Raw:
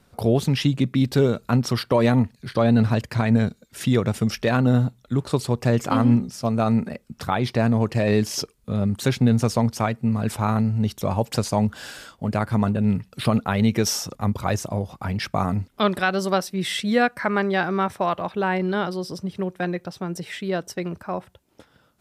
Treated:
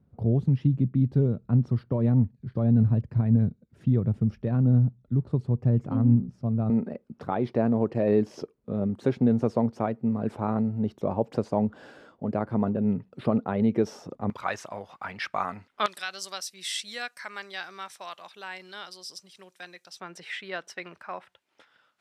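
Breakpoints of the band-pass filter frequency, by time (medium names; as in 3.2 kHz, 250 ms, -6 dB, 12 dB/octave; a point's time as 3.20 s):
band-pass filter, Q 0.92
120 Hz
from 6.70 s 380 Hz
from 14.30 s 1.6 kHz
from 15.86 s 6.4 kHz
from 20.00 s 2.1 kHz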